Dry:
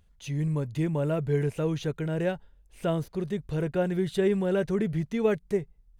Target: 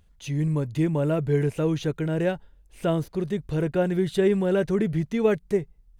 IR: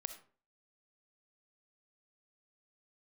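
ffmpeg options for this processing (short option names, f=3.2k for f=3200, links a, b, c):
-af "equalizer=f=310:t=o:w=0.29:g=3.5,volume=3dB"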